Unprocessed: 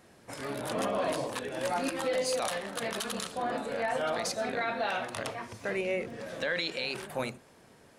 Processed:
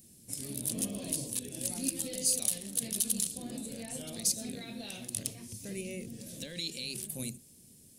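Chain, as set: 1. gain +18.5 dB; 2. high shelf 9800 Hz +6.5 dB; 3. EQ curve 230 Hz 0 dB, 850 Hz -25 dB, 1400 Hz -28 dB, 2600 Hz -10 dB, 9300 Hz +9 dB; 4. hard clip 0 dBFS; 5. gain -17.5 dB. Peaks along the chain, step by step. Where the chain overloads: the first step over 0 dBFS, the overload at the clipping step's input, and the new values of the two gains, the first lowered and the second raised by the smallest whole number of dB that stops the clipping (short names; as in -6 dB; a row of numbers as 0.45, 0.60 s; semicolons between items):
-0.5, +2.0, +7.5, 0.0, -17.5 dBFS; step 2, 7.5 dB; step 1 +10.5 dB, step 5 -9.5 dB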